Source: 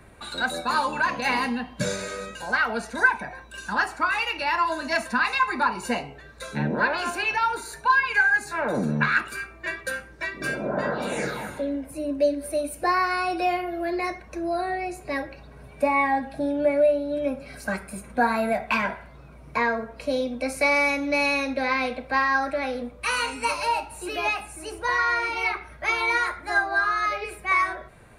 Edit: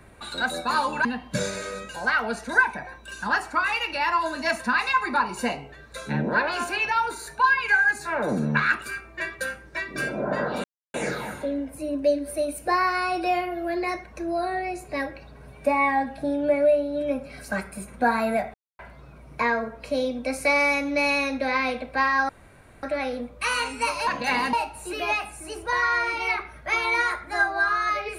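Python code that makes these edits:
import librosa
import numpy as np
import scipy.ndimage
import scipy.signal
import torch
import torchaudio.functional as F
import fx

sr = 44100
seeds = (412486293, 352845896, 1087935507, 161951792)

y = fx.edit(x, sr, fx.move(start_s=1.05, length_s=0.46, to_s=23.69),
    fx.insert_silence(at_s=11.1, length_s=0.3),
    fx.silence(start_s=18.7, length_s=0.25),
    fx.insert_room_tone(at_s=22.45, length_s=0.54), tone=tone)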